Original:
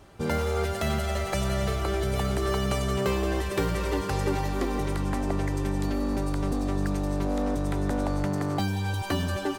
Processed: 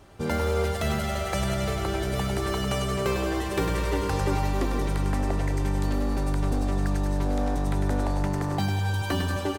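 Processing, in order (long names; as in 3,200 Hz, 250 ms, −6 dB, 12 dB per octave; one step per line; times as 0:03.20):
repeating echo 101 ms, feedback 55%, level −7 dB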